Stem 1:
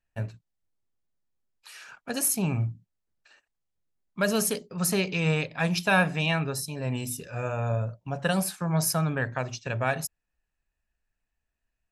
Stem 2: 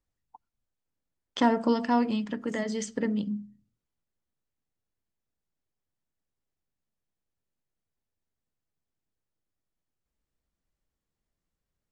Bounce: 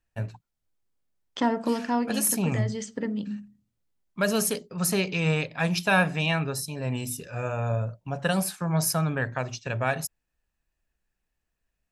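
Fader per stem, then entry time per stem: +0.5, −1.5 decibels; 0.00, 0.00 seconds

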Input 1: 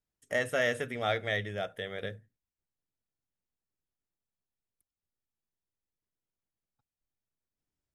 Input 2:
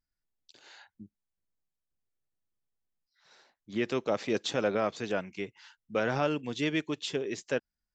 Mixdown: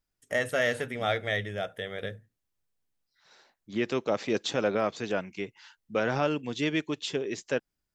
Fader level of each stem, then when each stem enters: +2.0, +1.5 decibels; 0.00, 0.00 seconds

